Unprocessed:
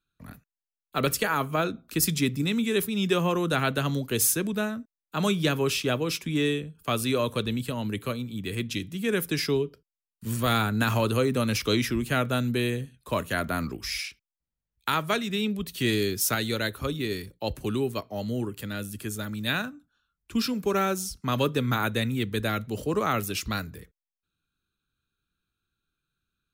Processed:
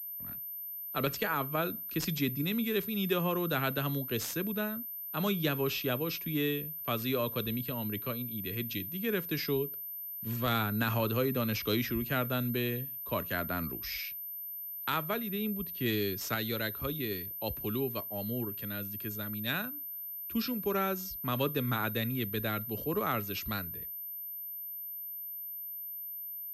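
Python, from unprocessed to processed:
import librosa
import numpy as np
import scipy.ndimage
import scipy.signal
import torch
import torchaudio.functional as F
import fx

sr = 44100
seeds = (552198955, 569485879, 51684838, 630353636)

y = fx.high_shelf(x, sr, hz=2300.0, db=-9.5, at=(15.08, 15.86))
y = fx.pwm(y, sr, carrier_hz=13000.0)
y = y * 10.0 ** (-6.0 / 20.0)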